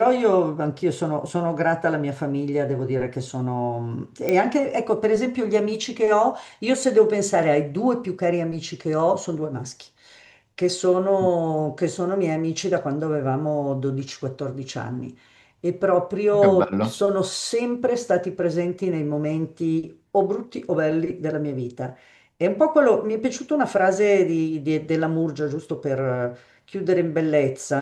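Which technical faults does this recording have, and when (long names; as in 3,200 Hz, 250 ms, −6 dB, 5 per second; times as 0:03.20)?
0:04.29: click −10 dBFS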